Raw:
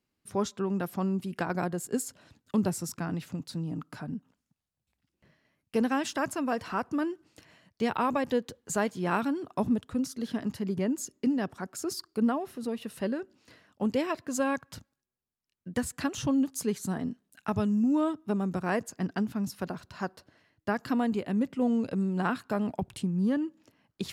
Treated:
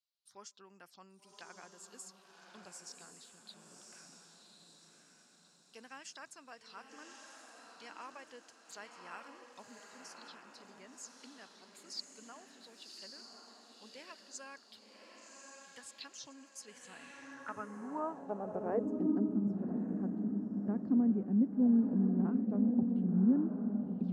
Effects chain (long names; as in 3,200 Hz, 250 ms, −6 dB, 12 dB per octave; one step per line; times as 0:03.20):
phaser swept by the level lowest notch 320 Hz, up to 3,800 Hz, full sweep at −28.5 dBFS
feedback delay with all-pass diffusion 1,126 ms, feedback 44%, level −3.5 dB
band-pass filter sweep 4,000 Hz → 240 Hz, 0:16.58–0:19.42